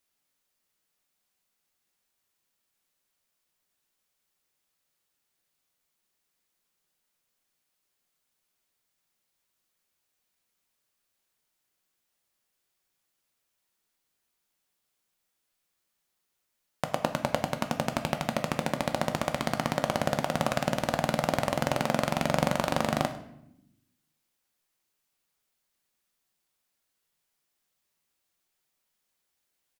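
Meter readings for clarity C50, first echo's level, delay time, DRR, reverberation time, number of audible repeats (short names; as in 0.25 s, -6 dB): 11.0 dB, -18.5 dB, 0.101 s, 6.0 dB, 0.80 s, 1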